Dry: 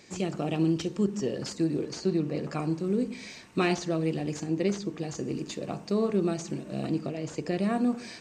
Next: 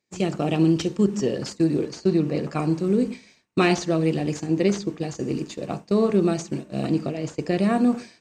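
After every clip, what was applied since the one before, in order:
downward expander −31 dBFS
level +6.5 dB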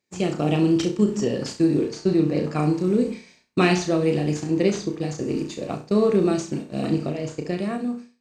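fade-out on the ending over 1.05 s
flutter between parallel walls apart 5.7 metres, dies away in 0.32 s
every ending faded ahead of time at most 190 dB per second

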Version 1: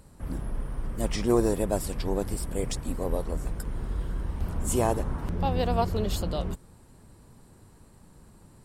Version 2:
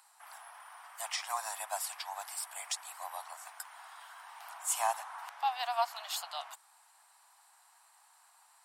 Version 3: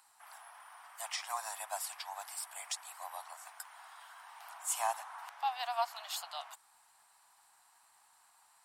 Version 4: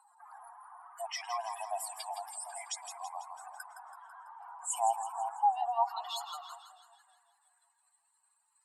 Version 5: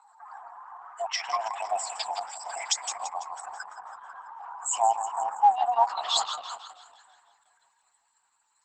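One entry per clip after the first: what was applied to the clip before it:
Butterworth high-pass 720 Hz 72 dB per octave
surface crackle 280 per second −63 dBFS; level −2.5 dB
expanding power law on the bin magnitudes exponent 2.8; echo with a time of its own for lows and highs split 870 Hz, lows 371 ms, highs 165 ms, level −9 dB; high-pass filter sweep 490 Hz → 2,600 Hz, 0:04.52–0:07.98
level +8 dB; Opus 10 kbit/s 48,000 Hz

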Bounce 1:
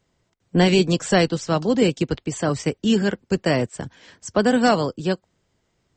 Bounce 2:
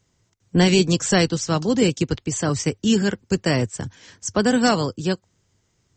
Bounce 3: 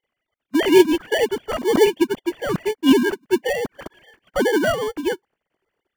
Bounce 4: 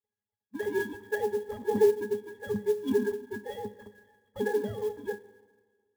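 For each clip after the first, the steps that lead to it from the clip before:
graphic EQ with 15 bands 100 Hz +8 dB, 630 Hz −4 dB, 6,300 Hz +9 dB
three sine waves on the formant tracks; in parallel at −4 dB: sample-rate reduction 1,300 Hz, jitter 0%; on the sum: level −2 dB
resonances in every octave G#, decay 0.16 s; on a send at −14 dB: convolution reverb RT60 1.5 s, pre-delay 36 ms; on the sum: converter with an unsteady clock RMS 0.02 ms

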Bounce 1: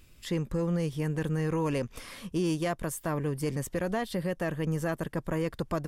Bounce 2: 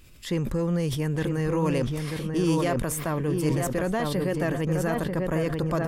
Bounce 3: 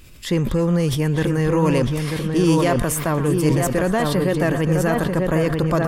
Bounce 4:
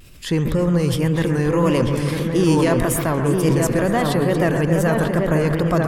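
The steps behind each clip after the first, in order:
on a send: feedback echo with a low-pass in the loop 940 ms, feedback 29%, low-pass 1,800 Hz, level −4.5 dB; on the sum: level that may fall only so fast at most 31 dB per second; level +3 dB
echo through a band-pass that steps 118 ms, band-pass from 1,200 Hz, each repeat 1.4 octaves, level −8.5 dB; level +7 dB
tape wow and flutter 95 cents; bucket-brigade delay 137 ms, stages 2,048, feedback 63%, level −8.5 dB

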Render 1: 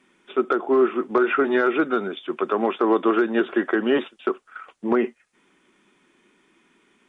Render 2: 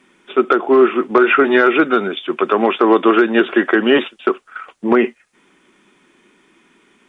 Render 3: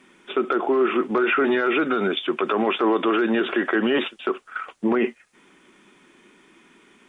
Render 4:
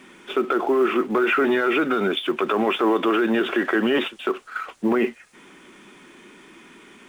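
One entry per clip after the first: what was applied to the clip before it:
dynamic equaliser 2,600 Hz, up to +6 dB, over −43 dBFS, Q 1.2; level +7 dB
brickwall limiter −12.5 dBFS, peak gain reduction 11 dB
mu-law and A-law mismatch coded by mu

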